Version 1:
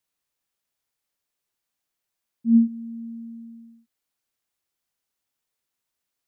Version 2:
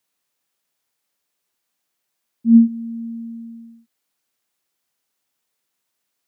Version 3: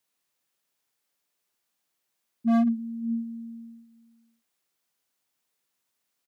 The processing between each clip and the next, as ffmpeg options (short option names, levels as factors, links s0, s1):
-af "highpass=130,volume=2.11"
-af "aecho=1:1:107|565:0.355|0.106,asoftclip=type=hard:threshold=0.168,volume=0.668"